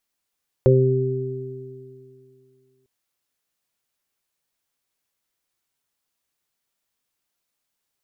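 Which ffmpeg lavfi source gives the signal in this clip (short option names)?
-f lavfi -i "aevalsrc='0.211*pow(10,-3*t/2.35)*sin(2*PI*130*t)+0.0562*pow(10,-3*t/2.74)*sin(2*PI*260*t)+0.211*pow(10,-3*t/2.58)*sin(2*PI*390*t)+0.188*pow(10,-3*t/0.41)*sin(2*PI*520*t)':d=2.2:s=44100"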